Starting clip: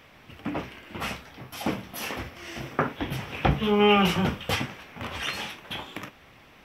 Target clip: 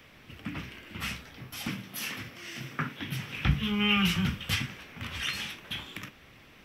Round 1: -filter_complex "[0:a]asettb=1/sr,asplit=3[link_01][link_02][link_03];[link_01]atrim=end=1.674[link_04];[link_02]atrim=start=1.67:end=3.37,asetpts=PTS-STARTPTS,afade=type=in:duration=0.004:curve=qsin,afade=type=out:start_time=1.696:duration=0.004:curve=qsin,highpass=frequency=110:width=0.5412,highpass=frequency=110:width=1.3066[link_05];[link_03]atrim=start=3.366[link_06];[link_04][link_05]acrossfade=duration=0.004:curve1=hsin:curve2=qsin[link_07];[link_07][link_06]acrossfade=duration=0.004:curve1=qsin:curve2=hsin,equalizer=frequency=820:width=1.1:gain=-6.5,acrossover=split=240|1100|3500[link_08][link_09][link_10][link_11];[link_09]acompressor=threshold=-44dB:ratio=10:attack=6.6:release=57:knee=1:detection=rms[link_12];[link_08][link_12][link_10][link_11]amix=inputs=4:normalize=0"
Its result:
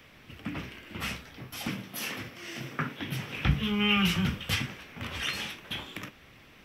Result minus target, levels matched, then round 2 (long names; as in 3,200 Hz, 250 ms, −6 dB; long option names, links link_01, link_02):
downward compressor: peak gain reduction −7.5 dB
-filter_complex "[0:a]asettb=1/sr,asplit=3[link_01][link_02][link_03];[link_01]atrim=end=1.674[link_04];[link_02]atrim=start=1.67:end=3.37,asetpts=PTS-STARTPTS,afade=type=in:duration=0.004:curve=qsin,afade=type=out:start_time=1.696:duration=0.004:curve=qsin,highpass=frequency=110:width=0.5412,highpass=frequency=110:width=1.3066[link_05];[link_03]atrim=start=3.366[link_06];[link_04][link_05]acrossfade=duration=0.004:curve1=hsin:curve2=qsin[link_07];[link_07][link_06]acrossfade=duration=0.004:curve1=qsin:curve2=hsin,equalizer=frequency=820:width=1.1:gain=-6.5,acrossover=split=240|1100|3500[link_08][link_09][link_10][link_11];[link_09]acompressor=threshold=-52.5dB:ratio=10:attack=6.6:release=57:knee=1:detection=rms[link_12];[link_08][link_12][link_10][link_11]amix=inputs=4:normalize=0"